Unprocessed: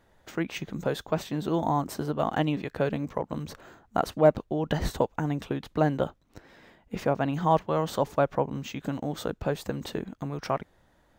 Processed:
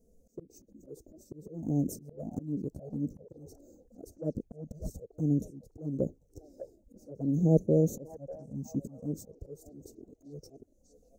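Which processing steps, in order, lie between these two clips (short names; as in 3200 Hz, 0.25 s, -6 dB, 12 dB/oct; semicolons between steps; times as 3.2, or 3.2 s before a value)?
elliptic band-stop 510–6200 Hz, stop band 40 dB; dynamic EQ 240 Hz, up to +6 dB, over -43 dBFS, Q 0.97; auto swell 0.472 s; delay with a stepping band-pass 0.594 s, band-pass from 720 Hz, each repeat 0.7 oct, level -7 dB; envelope flanger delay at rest 4.6 ms, full sweep at -29.5 dBFS; gain +3 dB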